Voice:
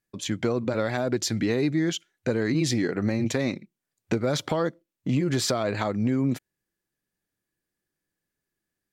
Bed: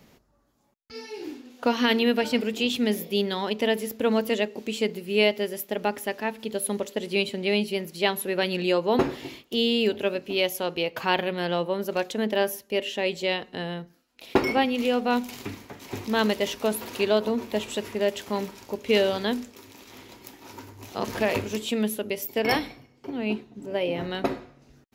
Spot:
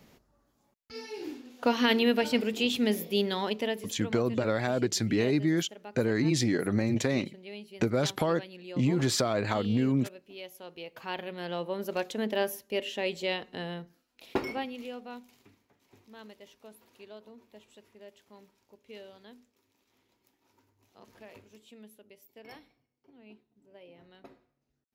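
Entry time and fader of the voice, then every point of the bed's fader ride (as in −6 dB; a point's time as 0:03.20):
3.70 s, −2.0 dB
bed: 0:03.47 −2.5 dB
0:04.21 −19.5 dB
0:10.44 −19.5 dB
0:11.88 −5 dB
0:14.10 −5 dB
0:15.56 −26 dB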